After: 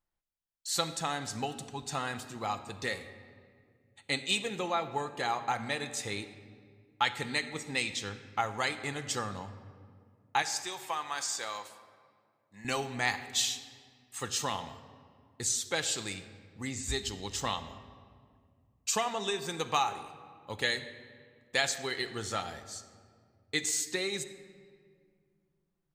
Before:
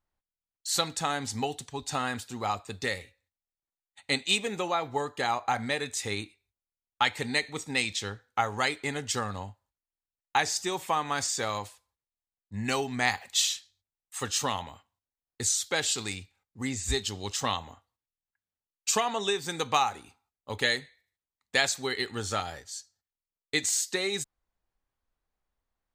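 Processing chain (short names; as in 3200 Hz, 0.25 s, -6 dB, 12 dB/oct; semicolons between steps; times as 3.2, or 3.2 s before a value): 10.42–12.65 HPF 1000 Hz 6 dB/oct; reverb RT60 2.1 s, pre-delay 6 ms, DRR 8.5 dB; gain -4 dB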